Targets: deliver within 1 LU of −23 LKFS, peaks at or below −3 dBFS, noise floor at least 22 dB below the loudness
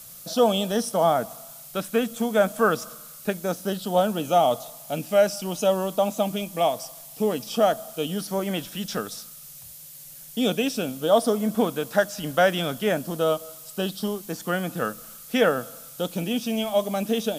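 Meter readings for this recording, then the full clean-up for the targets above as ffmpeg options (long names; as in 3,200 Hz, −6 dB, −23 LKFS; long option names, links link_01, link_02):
background noise floor −44 dBFS; target noise floor −47 dBFS; integrated loudness −25.0 LKFS; sample peak −7.0 dBFS; target loudness −23.0 LKFS
→ -af "afftdn=noise_reduction=6:noise_floor=-44"
-af "volume=2dB"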